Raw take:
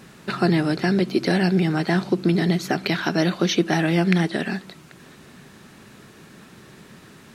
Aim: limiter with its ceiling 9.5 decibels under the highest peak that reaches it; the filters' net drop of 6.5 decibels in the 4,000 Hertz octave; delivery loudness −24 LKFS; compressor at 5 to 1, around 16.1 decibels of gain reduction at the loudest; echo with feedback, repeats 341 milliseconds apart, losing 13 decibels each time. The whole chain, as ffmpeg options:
ffmpeg -i in.wav -af "equalizer=frequency=4000:width_type=o:gain=-8.5,acompressor=threshold=-34dB:ratio=5,alimiter=level_in=4.5dB:limit=-24dB:level=0:latency=1,volume=-4.5dB,aecho=1:1:341|682|1023:0.224|0.0493|0.0108,volume=16dB" out.wav

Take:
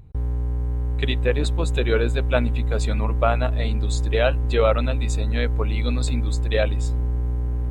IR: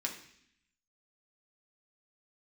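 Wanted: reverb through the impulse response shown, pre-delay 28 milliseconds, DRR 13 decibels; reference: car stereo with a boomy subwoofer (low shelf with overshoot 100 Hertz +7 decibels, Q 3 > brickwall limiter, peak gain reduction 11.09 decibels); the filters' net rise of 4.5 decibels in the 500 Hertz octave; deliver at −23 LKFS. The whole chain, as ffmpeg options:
-filter_complex "[0:a]equalizer=frequency=500:width_type=o:gain=5.5,asplit=2[link_01][link_02];[1:a]atrim=start_sample=2205,adelay=28[link_03];[link_02][link_03]afir=irnorm=-1:irlink=0,volume=-15dB[link_04];[link_01][link_04]amix=inputs=2:normalize=0,lowshelf=frequency=100:width_type=q:width=3:gain=7,volume=-3.5dB,alimiter=limit=-15.5dB:level=0:latency=1"

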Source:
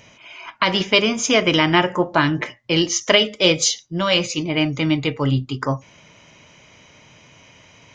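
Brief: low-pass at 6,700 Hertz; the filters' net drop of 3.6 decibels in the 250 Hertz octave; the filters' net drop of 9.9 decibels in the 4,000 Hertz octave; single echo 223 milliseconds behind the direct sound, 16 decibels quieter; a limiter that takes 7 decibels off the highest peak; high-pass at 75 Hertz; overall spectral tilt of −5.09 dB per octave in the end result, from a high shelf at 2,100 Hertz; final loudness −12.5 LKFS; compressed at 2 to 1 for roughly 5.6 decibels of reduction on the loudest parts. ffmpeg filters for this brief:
ffmpeg -i in.wav -af "highpass=75,lowpass=6700,equalizer=frequency=250:width_type=o:gain=-5,highshelf=frequency=2100:gain=-8.5,equalizer=frequency=4000:width_type=o:gain=-6,acompressor=threshold=-24dB:ratio=2,alimiter=limit=-17dB:level=0:latency=1,aecho=1:1:223:0.158,volume=16dB" out.wav

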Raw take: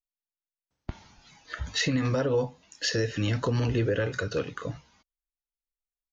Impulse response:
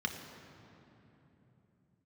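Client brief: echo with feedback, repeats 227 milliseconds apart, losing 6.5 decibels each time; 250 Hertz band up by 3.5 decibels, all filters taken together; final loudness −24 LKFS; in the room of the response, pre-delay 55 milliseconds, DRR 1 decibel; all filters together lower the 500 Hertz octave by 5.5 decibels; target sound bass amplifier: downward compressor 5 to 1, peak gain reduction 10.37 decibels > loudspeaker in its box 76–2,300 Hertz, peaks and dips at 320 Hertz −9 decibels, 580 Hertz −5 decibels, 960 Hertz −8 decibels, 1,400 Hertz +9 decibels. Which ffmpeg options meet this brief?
-filter_complex "[0:a]equalizer=frequency=250:width_type=o:gain=8.5,equalizer=frequency=500:width_type=o:gain=-5,aecho=1:1:227|454|681|908|1135|1362:0.473|0.222|0.105|0.0491|0.0231|0.0109,asplit=2[link_01][link_02];[1:a]atrim=start_sample=2205,adelay=55[link_03];[link_02][link_03]afir=irnorm=-1:irlink=0,volume=-5.5dB[link_04];[link_01][link_04]amix=inputs=2:normalize=0,acompressor=threshold=-24dB:ratio=5,highpass=frequency=76:width=0.5412,highpass=frequency=76:width=1.3066,equalizer=frequency=320:width_type=q:width=4:gain=-9,equalizer=frequency=580:width_type=q:width=4:gain=-5,equalizer=frequency=960:width_type=q:width=4:gain=-8,equalizer=frequency=1400:width_type=q:width=4:gain=9,lowpass=frequency=2300:width=0.5412,lowpass=frequency=2300:width=1.3066,volume=6.5dB"

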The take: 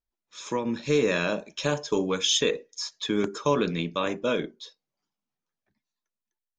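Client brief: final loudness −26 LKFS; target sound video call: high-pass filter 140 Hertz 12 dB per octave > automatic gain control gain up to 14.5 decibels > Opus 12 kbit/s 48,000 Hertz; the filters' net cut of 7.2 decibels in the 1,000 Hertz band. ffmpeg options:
ffmpeg -i in.wav -af "highpass=140,equalizer=frequency=1000:width_type=o:gain=-8.5,dynaudnorm=maxgain=14.5dB,volume=2.5dB" -ar 48000 -c:a libopus -b:a 12k out.opus

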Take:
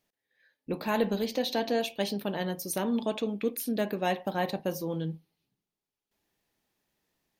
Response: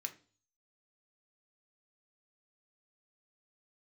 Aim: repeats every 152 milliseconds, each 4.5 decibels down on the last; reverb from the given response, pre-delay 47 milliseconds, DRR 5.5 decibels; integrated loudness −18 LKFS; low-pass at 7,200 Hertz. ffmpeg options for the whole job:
-filter_complex "[0:a]lowpass=7200,aecho=1:1:152|304|456|608|760|912|1064|1216|1368:0.596|0.357|0.214|0.129|0.0772|0.0463|0.0278|0.0167|0.01,asplit=2[link_01][link_02];[1:a]atrim=start_sample=2205,adelay=47[link_03];[link_02][link_03]afir=irnorm=-1:irlink=0,volume=-3.5dB[link_04];[link_01][link_04]amix=inputs=2:normalize=0,volume=11dB"

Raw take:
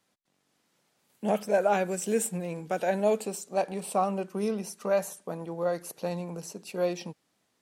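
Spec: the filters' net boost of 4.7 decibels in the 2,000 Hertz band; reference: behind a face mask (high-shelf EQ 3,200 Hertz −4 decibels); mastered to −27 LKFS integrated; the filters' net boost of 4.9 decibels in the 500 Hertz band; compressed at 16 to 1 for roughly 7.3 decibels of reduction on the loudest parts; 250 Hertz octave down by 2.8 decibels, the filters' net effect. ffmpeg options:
ffmpeg -i in.wav -af "equalizer=frequency=250:width_type=o:gain=-6.5,equalizer=frequency=500:width_type=o:gain=7,equalizer=frequency=2000:width_type=o:gain=7.5,acompressor=threshold=-22dB:ratio=16,highshelf=frequency=3200:gain=-4,volume=3.5dB" out.wav

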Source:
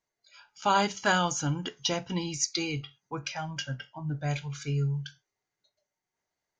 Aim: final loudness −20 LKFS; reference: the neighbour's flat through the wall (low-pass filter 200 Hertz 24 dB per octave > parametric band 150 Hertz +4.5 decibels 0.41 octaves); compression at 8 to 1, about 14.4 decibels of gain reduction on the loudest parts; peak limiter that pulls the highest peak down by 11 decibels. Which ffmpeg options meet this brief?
ffmpeg -i in.wav -af "acompressor=threshold=-35dB:ratio=8,alimiter=level_in=8.5dB:limit=-24dB:level=0:latency=1,volume=-8.5dB,lowpass=frequency=200:width=0.5412,lowpass=frequency=200:width=1.3066,equalizer=frequency=150:width_type=o:width=0.41:gain=4.5,volume=21dB" out.wav

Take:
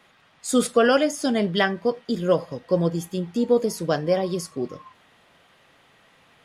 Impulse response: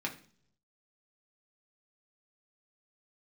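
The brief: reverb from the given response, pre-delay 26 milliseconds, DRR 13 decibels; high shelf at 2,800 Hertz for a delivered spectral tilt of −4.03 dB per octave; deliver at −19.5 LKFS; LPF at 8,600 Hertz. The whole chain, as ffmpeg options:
-filter_complex "[0:a]lowpass=8600,highshelf=frequency=2800:gain=9,asplit=2[link_01][link_02];[1:a]atrim=start_sample=2205,adelay=26[link_03];[link_02][link_03]afir=irnorm=-1:irlink=0,volume=-16.5dB[link_04];[link_01][link_04]amix=inputs=2:normalize=0,volume=2.5dB"

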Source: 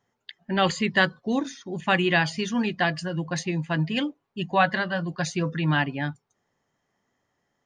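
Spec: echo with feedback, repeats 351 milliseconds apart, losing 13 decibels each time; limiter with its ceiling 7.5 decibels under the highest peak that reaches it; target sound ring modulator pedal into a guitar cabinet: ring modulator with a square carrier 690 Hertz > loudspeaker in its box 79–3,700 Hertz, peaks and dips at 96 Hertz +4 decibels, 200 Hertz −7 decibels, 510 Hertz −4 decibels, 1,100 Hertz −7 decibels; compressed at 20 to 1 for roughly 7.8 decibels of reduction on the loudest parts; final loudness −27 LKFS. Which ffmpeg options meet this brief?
ffmpeg -i in.wav -af "acompressor=threshold=-23dB:ratio=20,alimiter=limit=-21dB:level=0:latency=1,aecho=1:1:351|702|1053:0.224|0.0493|0.0108,aeval=exprs='val(0)*sgn(sin(2*PI*690*n/s))':channel_layout=same,highpass=79,equalizer=frequency=96:width_type=q:width=4:gain=4,equalizer=frequency=200:width_type=q:width=4:gain=-7,equalizer=frequency=510:width_type=q:width=4:gain=-4,equalizer=frequency=1100:width_type=q:width=4:gain=-7,lowpass=frequency=3700:width=0.5412,lowpass=frequency=3700:width=1.3066,volume=5.5dB" out.wav

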